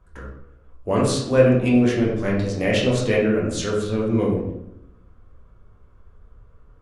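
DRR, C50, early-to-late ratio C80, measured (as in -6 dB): -5.0 dB, 3.0 dB, 6.0 dB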